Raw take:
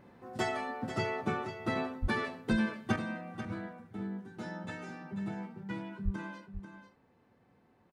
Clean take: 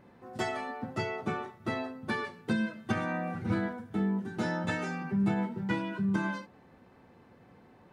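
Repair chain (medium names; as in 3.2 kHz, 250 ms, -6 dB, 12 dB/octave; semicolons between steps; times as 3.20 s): de-plosive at 2.01/6.04 s; inverse comb 490 ms -10 dB; gain correction +10 dB, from 2.96 s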